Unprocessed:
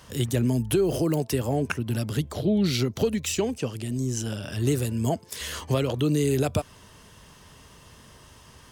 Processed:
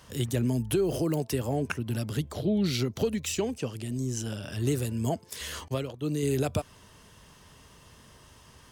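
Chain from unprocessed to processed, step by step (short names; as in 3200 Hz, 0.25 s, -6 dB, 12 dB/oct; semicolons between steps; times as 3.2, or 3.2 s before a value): 5.68–6.23 expander -18 dBFS; gain -3.5 dB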